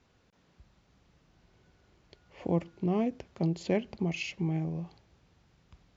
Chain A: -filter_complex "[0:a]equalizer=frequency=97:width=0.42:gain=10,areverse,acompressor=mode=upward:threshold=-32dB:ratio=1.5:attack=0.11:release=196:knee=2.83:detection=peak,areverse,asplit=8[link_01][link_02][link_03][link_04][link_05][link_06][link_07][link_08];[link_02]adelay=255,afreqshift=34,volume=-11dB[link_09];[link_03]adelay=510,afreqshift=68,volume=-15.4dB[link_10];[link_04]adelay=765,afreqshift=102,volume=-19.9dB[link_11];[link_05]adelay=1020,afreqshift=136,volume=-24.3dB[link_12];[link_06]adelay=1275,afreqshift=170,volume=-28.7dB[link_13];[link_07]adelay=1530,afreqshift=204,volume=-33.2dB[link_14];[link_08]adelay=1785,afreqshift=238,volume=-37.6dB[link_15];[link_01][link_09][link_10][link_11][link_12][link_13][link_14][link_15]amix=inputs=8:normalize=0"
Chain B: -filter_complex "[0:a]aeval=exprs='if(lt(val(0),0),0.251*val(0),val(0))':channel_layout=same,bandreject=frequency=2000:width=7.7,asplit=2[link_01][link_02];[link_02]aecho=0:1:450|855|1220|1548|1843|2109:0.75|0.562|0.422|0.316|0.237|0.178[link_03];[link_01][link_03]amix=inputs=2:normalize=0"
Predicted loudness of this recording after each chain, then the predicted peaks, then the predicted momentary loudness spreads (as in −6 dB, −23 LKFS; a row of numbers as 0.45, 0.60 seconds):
−26.5, −34.0 LKFS; −12.0, −16.0 dBFS; 17, 6 LU